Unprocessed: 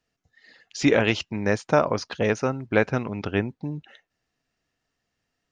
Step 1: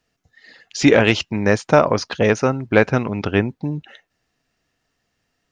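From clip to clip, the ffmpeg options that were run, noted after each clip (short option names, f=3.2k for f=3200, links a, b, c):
-af "acontrast=23,volume=2dB"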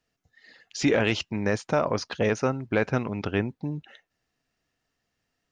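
-af "alimiter=limit=-6dB:level=0:latency=1:release=20,volume=-7dB"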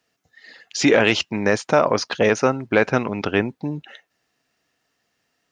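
-af "highpass=f=260:p=1,volume=8.5dB"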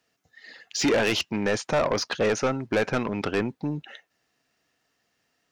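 -af "asoftclip=type=tanh:threshold=-16dB,volume=-1.5dB"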